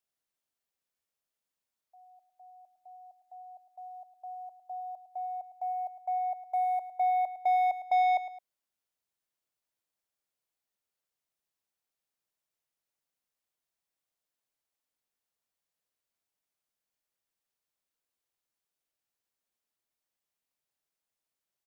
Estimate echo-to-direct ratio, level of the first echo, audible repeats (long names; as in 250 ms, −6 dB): −12.5 dB, −13.0 dB, 2